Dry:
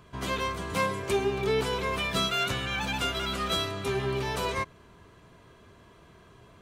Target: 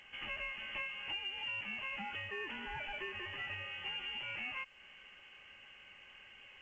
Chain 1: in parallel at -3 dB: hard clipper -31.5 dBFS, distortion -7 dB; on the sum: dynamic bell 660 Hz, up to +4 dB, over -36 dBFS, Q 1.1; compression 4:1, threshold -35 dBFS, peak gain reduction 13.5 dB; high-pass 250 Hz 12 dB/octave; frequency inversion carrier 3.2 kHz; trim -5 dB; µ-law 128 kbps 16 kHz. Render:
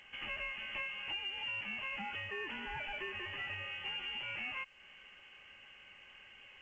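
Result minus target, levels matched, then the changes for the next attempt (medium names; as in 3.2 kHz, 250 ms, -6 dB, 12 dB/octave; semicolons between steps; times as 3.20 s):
hard clipper: distortion -4 dB
change: hard clipper -43 dBFS, distortion -3 dB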